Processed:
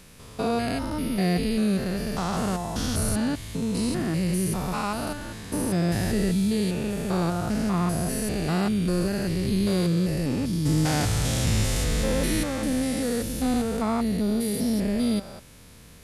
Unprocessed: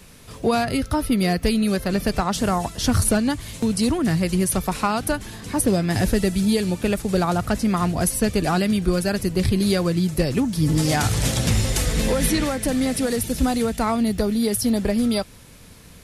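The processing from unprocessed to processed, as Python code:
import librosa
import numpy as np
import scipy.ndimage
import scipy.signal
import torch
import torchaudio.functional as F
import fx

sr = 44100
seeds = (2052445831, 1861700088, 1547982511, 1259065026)

y = fx.spec_steps(x, sr, hold_ms=200)
y = fx.quant_float(y, sr, bits=6, at=(11.85, 12.47))
y = y * 10.0 ** (-1.5 / 20.0)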